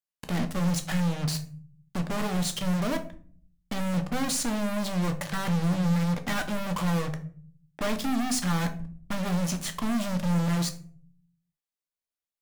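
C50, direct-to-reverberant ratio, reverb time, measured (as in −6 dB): 13.0 dB, 6.0 dB, 0.45 s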